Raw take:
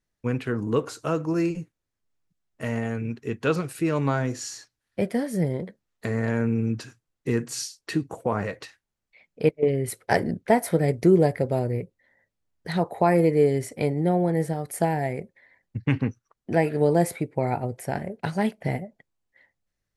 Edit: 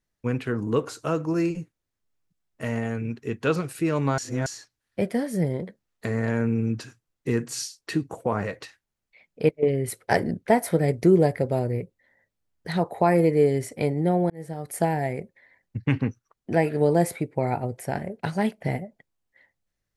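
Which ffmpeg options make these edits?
-filter_complex "[0:a]asplit=4[s0][s1][s2][s3];[s0]atrim=end=4.182[s4];[s1]atrim=start=4.178:end=4.462,asetpts=PTS-STARTPTS,areverse[s5];[s2]atrim=start=4.458:end=14.3,asetpts=PTS-STARTPTS,afade=t=out:st=9.838:d=0.004:c=hsin[s6];[s3]atrim=start=14.3,asetpts=PTS-STARTPTS,afade=t=in:d=0.45[s7];[s4][s5]acrossfade=d=0.004:c1=hsin:c2=hsin[s8];[s6][s7]concat=n=2:v=0:a=1[s9];[s8][s9]acrossfade=d=0.004:c1=hsin:c2=hsin"

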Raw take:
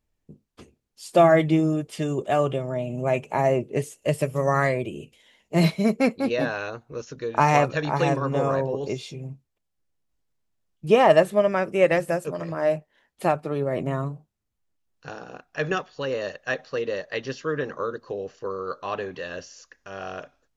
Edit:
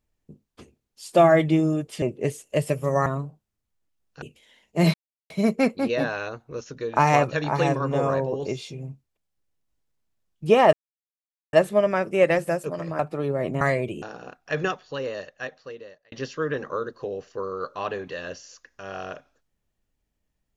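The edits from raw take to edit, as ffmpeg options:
-filter_complex "[0:a]asplit=10[s0][s1][s2][s3][s4][s5][s6][s7][s8][s9];[s0]atrim=end=2.022[s10];[s1]atrim=start=3.538:end=4.582[s11];[s2]atrim=start=13.928:end=15.092[s12];[s3]atrim=start=4.988:end=5.71,asetpts=PTS-STARTPTS,afade=t=out:st=0.718:d=0.004:c=hsin,apad=pad_dur=0.36[s13];[s4]atrim=start=5.71:end=11.14,asetpts=PTS-STARTPTS,afade=t=in:d=0.004:c=hsin,afade=t=out:st=5.426:d=0.004:c=hsin,apad=pad_dur=0.8[s14];[s5]atrim=start=11.14:end=12.602,asetpts=PTS-STARTPTS,afade=t=in:d=0.004:c=hsin[s15];[s6]atrim=start=13.308:end=13.932[s16];[s7]atrim=start=4.578:end=4.992[s17];[s8]atrim=start=15.088:end=17.19,asetpts=PTS-STARTPTS,afade=t=out:st=0.652:d=1.45[s18];[s9]atrim=start=17.19,asetpts=PTS-STARTPTS,afade=t=in:d=0.004:c=hsin[s19];[s10][s11]acrossfade=d=0.004:c1=hsin:c2=hsin[s20];[s20][s12]acrossfade=d=0.004:c1=hsin:c2=hsin[s21];[s13][s14][s15]concat=n=3:v=0:a=1[s22];[s21][s22]acrossfade=d=0.004:c1=hsin:c2=hsin[s23];[s23][s16]acrossfade=d=0.004:c1=hsin:c2=hsin[s24];[s24][s17]acrossfade=d=0.004:c1=hsin:c2=hsin[s25];[s18][s19]concat=n=2:v=0:a=1[s26];[s25][s26]acrossfade=d=0.004:c1=hsin:c2=hsin"

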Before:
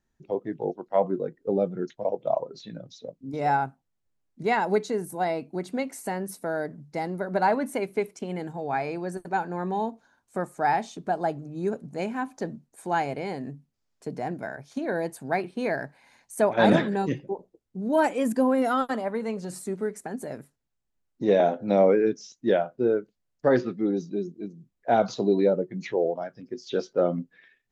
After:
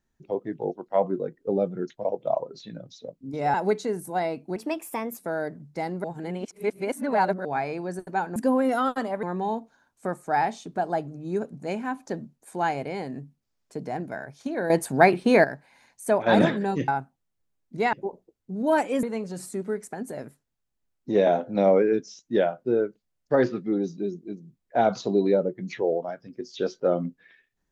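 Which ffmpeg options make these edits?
-filter_complex "[0:a]asplit=13[s0][s1][s2][s3][s4][s5][s6][s7][s8][s9][s10][s11][s12];[s0]atrim=end=3.542[s13];[s1]atrim=start=4.588:end=5.614[s14];[s2]atrim=start=5.61:end=6.36,asetpts=PTS-STARTPTS,asetrate=53361,aresample=44100[s15];[s3]atrim=start=6.356:end=7.222[s16];[s4]atrim=start=7.218:end=8.632,asetpts=PTS-STARTPTS,areverse[s17];[s5]atrim=start=8.628:end=9.542[s18];[s6]atrim=start=18.288:end=19.162[s19];[s7]atrim=start=9.538:end=15.012[s20];[s8]atrim=start=15.008:end=15.752,asetpts=PTS-STARTPTS,volume=3.16[s21];[s9]atrim=start=15.748:end=17.192[s22];[s10]atrim=start=3.538:end=4.592[s23];[s11]atrim=start=17.188:end=18.292[s24];[s12]atrim=start=19.158[s25];[s13][s14]acrossfade=d=0.004:c1=hsin:c2=hsin[s26];[s26][s15]acrossfade=d=0.004:c1=hsin:c2=hsin[s27];[s27][s16]acrossfade=d=0.004:c1=hsin:c2=hsin[s28];[s28][s17]acrossfade=d=0.004:c1=hsin:c2=hsin[s29];[s29][s18]acrossfade=d=0.004:c1=hsin:c2=hsin[s30];[s30][s19]acrossfade=d=0.004:c1=hsin:c2=hsin[s31];[s31][s20]acrossfade=d=0.004:c1=hsin:c2=hsin[s32];[s32][s21]acrossfade=d=0.004:c1=hsin:c2=hsin[s33];[s33][s22]acrossfade=d=0.004:c1=hsin:c2=hsin[s34];[s34][s23]acrossfade=d=0.004:c1=hsin:c2=hsin[s35];[s35][s24]acrossfade=d=0.004:c1=hsin:c2=hsin[s36];[s36][s25]acrossfade=d=0.004:c1=hsin:c2=hsin"

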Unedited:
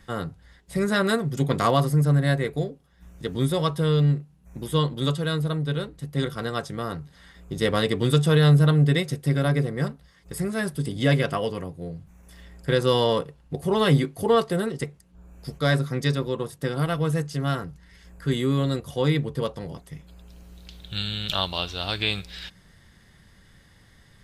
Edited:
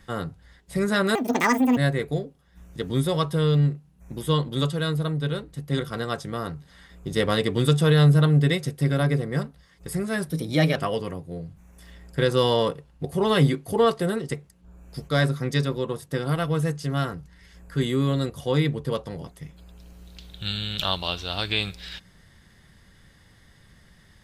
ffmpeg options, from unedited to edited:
-filter_complex "[0:a]asplit=5[s0][s1][s2][s3][s4];[s0]atrim=end=1.154[s5];[s1]atrim=start=1.15:end=2.22,asetpts=PTS-STARTPTS,asetrate=76293,aresample=44100[s6];[s2]atrim=start=2.216:end=10.744[s7];[s3]atrim=start=10.74:end=11.26,asetpts=PTS-STARTPTS,asetrate=48951,aresample=44100,atrim=end_sample=20659,asetpts=PTS-STARTPTS[s8];[s4]atrim=start=11.256[s9];[s5][s6]acrossfade=d=0.004:c1=hsin:c2=hsin[s10];[s10][s7]acrossfade=d=0.004:c1=hsin:c2=hsin[s11];[s11][s8]acrossfade=d=0.004:c1=hsin:c2=hsin[s12];[s12][s9]acrossfade=d=0.004:c1=hsin:c2=hsin"

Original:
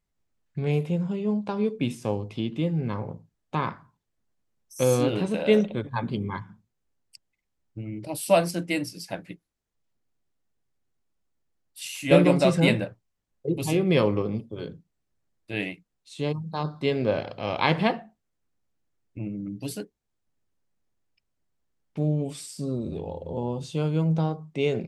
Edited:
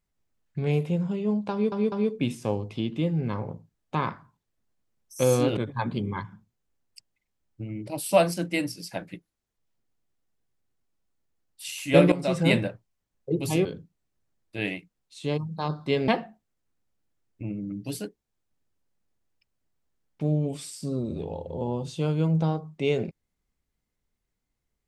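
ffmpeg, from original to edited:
-filter_complex "[0:a]asplit=7[s0][s1][s2][s3][s4][s5][s6];[s0]atrim=end=1.722[s7];[s1]atrim=start=1.518:end=1.722[s8];[s2]atrim=start=1.518:end=5.172[s9];[s3]atrim=start=5.738:end=12.29,asetpts=PTS-STARTPTS,afade=t=out:st=6.548:d=0.004:c=hsin:silence=0.188365[s10];[s4]atrim=start=12.29:end=13.822,asetpts=PTS-STARTPTS,afade=t=in:d=0.43:silence=0.188365[s11];[s5]atrim=start=14.598:end=17.032[s12];[s6]atrim=start=17.838[s13];[s7][s8]acrossfade=d=0.004:c1=hsin:c2=hsin[s14];[s14][s9]acrossfade=d=0.004:c1=hsin:c2=hsin[s15];[s10][s11]concat=n=2:v=0:a=1[s16];[s15][s16]acrossfade=d=0.004:c1=hsin:c2=hsin[s17];[s17][s12]acrossfade=d=0.004:c1=hsin:c2=hsin[s18];[s18][s13]acrossfade=d=0.004:c1=hsin:c2=hsin"

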